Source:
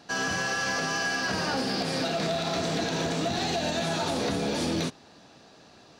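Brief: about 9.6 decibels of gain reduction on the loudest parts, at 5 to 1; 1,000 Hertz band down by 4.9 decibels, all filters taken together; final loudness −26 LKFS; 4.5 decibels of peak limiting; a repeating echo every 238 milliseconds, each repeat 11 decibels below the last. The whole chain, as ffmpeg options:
ffmpeg -i in.wav -af "equalizer=frequency=1000:width_type=o:gain=-7.5,acompressor=threshold=-37dB:ratio=5,alimiter=level_in=9dB:limit=-24dB:level=0:latency=1,volume=-9dB,aecho=1:1:238|476|714:0.282|0.0789|0.0221,volume=13.5dB" out.wav

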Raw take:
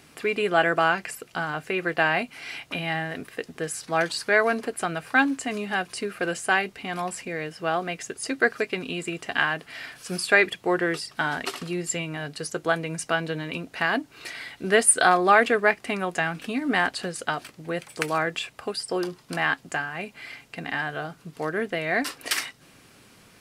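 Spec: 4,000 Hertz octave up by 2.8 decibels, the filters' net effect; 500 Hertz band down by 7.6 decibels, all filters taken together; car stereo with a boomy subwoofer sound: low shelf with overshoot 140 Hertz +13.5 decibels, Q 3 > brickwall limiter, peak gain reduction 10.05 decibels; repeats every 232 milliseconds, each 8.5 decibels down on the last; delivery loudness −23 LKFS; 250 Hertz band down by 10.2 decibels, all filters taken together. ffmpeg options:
ffmpeg -i in.wav -af "lowshelf=frequency=140:width_type=q:width=3:gain=13.5,equalizer=frequency=250:width_type=o:gain=-8.5,equalizer=frequency=500:width_type=o:gain=-6.5,equalizer=frequency=4000:width_type=o:gain=4,aecho=1:1:232|464|696|928:0.376|0.143|0.0543|0.0206,volume=6dB,alimiter=limit=-9.5dB:level=0:latency=1" out.wav

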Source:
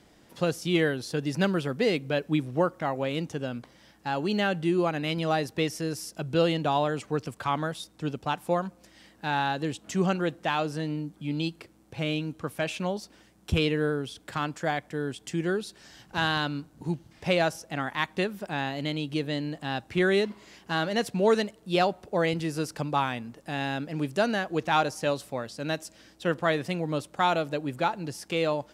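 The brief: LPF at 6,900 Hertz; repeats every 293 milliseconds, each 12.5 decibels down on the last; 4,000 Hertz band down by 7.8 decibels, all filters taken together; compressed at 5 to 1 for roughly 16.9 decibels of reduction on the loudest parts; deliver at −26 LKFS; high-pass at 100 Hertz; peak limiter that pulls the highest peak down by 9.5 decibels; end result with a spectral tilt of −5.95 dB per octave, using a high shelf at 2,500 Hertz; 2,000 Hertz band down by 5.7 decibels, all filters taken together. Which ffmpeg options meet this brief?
ffmpeg -i in.wav -af "highpass=100,lowpass=6900,equalizer=frequency=2000:width_type=o:gain=-5,highshelf=frequency=2500:gain=-4,equalizer=frequency=4000:width_type=o:gain=-4.5,acompressor=threshold=-39dB:ratio=5,alimiter=level_in=9dB:limit=-24dB:level=0:latency=1,volume=-9dB,aecho=1:1:293|586|879:0.237|0.0569|0.0137,volume=18.5dB" out.wav

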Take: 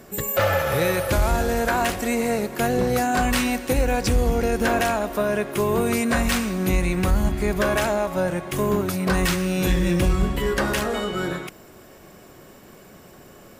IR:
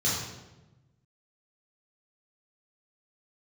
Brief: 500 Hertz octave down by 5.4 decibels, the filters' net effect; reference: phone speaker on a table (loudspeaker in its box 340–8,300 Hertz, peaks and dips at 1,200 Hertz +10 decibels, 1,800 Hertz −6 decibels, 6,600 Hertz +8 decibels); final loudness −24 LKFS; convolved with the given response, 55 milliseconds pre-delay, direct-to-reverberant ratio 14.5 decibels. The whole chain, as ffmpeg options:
-filter_complex "[0:a]equalizer=frequency=500:width_type=o:gain=-6.5,asplit=2[link_01][link_02];[1:a]atrim=start_sample=2205,adelay=55[link_03];[link_02][link_03]afir=irnorm=-1:irlink=0,volume=-24.5dB[link_04];[link_01][link_04]amix=inputs=2:normalize=0,highpass=frequency=340:width=0.5412,highpass=frequency=340:width=1.3066,equalizer=frequency=1200:width_type=q:width=4:gain=10,equalizer=frequency=1800:width_type=q:width=4:gain=-6,equalizer=frequency=6600:width_type=q:width=4:gain=8,lowpass=frequency=8300:width=0.5412,lowpass=frequency=8300:width=1.3066,volume=1.5dB"

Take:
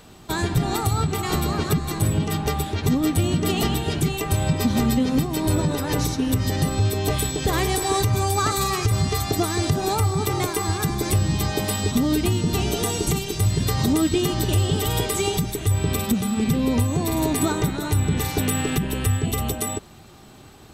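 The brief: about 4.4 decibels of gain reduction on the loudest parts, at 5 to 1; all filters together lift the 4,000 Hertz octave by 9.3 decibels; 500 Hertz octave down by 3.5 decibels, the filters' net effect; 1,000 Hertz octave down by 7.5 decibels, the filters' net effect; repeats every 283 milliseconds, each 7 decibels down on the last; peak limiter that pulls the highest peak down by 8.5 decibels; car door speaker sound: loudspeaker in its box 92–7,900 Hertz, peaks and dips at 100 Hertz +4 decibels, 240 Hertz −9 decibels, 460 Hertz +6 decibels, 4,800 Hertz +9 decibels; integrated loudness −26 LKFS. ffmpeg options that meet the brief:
ffmpeg -i in.wav -af "equalizer=frequency=500:width_type=o:gain=-6.5,equalizer=frequency=1000:width_type=o:gain=-8.5,equalizer=frequency=4000:width_type=o:gain=7.5,acompressor=threshold=-21dB:ratio=5,alimiter=limit=-18.5dB:level=0:latency=1,highpass=92,equalizer=frequency=100:width_type=q:width=4:gain=4,equalizer=frequency=240:width_type=q:width=4:gain=-9,equalizer=frequency=460:width_type=q:width=4:gain=6,equalizer=frequency=4800:width_type=q:width=4:gain=9,lowpass=frequency=7900:width=0.5412,lowpass=frequency=7900:width=1.3066,aecho=1:1:283|566|849|1132|1415:0.447|0.201|0.0905|0.0407|0.0183,volume=-0.5dB" out.wav

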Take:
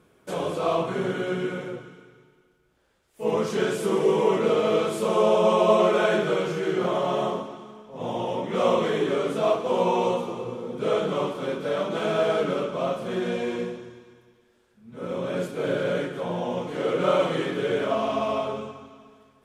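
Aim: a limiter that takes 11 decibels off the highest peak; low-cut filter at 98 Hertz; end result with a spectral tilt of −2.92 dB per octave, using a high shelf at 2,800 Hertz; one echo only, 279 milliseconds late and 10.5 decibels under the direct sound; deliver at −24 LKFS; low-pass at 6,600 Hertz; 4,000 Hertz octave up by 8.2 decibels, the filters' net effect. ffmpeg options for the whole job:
ffmpeg -i in.wav -af "highpass=98,lowpass=6600,highshelf=frequency=2800:gain=7.5,equalizer=frequency=4000:width_type=o:gain=5.5,alimiter=limit=-18dB:level=0:latency=1,aecho=1:1:279:0.299,volume=3.5dB" out.wav

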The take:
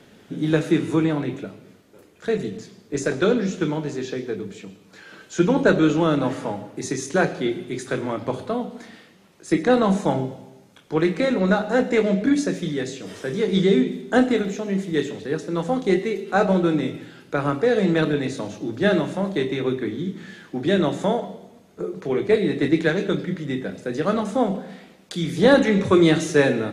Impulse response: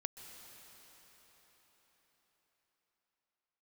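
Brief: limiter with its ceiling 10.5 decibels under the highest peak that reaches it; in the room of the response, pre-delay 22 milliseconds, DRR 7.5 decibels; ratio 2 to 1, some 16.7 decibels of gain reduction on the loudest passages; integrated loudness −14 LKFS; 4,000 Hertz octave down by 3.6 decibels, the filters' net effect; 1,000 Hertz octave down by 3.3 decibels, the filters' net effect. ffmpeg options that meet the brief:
-filter_complex "[0:a]equalizer=frequency=1000:width_type=o:gain=-4.5,equalizer=frequency=4000:width_type=o:gain=-4,acompressor=threshold=-44dB:ratio=2,alimiter=level_in=7.5dB:limit=-24dB:level=0:latency=1,volume=-7.5dB,asplit=2[link_01][link_02];[1:a]atrim=start_sample=2205,adelay=22[link_03];[link_02][link_03]afir=irnorm=-1:irlink=0,volume=-5.5dB[link_04];[link_01][link_04]amix=inputs=2:normalize=0,volume=26.5dB"

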